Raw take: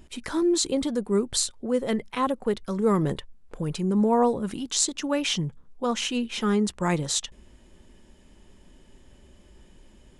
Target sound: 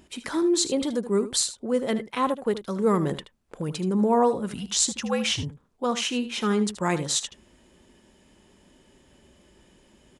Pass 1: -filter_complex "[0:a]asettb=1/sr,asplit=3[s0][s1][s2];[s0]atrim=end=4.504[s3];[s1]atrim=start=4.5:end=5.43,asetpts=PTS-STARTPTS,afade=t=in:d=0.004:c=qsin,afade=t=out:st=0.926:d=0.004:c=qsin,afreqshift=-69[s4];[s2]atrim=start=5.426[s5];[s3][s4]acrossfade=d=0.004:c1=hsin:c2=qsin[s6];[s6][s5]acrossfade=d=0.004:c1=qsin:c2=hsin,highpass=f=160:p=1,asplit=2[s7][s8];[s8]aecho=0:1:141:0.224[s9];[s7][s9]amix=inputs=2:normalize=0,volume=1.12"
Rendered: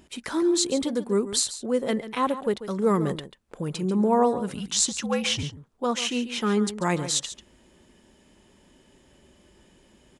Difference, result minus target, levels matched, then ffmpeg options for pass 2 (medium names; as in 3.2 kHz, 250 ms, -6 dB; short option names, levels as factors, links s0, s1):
echo 64 ms late
-filter_complex "[0:a]asettb=1/sr,asplit=3[s0][s1][s2];[s0]atrim=end=4.504[s3];[s1]atrim=start=4.5:end=5.43,asetpts=PTS-STARTPTS,afade=t=in:d=0.004:c=qsin,afade=t=out:st=0.926:d=0.004:c=qsin,afreqshift=-69[s4];[s2]atrim=start=5.426[s5];[s3][s4]acrossfade=d=0.004:c1=hsin:c2=qsin[s6];[s6][s5]acrossfade=d=0.004:c1=qsin:c2=hsin,highpass=f=160:p=1,asplit=2[s7][s8];[s8]aecho=0:1:77:0.224[s9];[s7][s9]amix=inputs=2:normalize=0,volume=1.12"